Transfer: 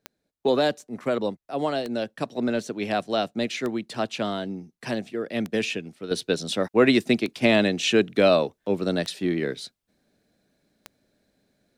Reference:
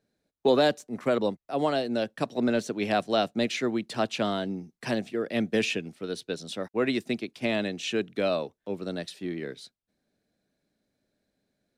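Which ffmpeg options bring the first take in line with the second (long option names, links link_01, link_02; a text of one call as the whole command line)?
ffmpeg -i in.wav -af "adeclick=threshold=4,asetnsamples=nb_out_samples=441:pad=0,asendcmd='6.11 volume volume -8.5dB',volume=0dB" out.wav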